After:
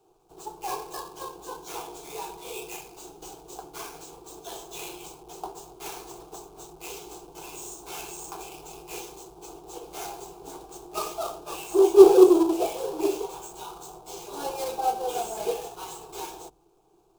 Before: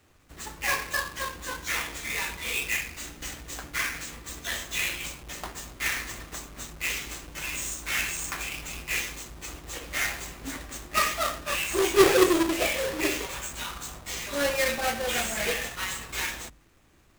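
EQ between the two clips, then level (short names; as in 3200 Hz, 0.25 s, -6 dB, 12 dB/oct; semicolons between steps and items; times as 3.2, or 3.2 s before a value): band shelf 540 Hz +14.5 dB; fixed phaser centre 380 Hz, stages 8; -6.5 dB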